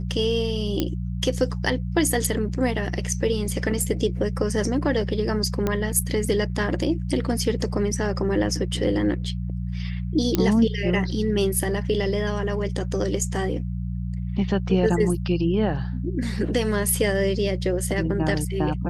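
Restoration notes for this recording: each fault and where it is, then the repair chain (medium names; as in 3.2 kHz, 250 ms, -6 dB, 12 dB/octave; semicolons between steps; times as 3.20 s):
hum 60 Hz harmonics 3 -28 dBFS
0.80 s: pop -9 dBFS
5.67 s: pop -11 dBFS
10.35 s: pop -6 dBFS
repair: de-click; de-hum 60 Hz, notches 3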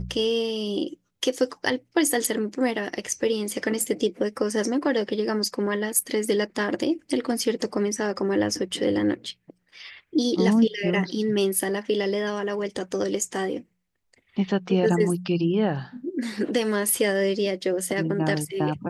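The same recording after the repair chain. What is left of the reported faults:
nothing left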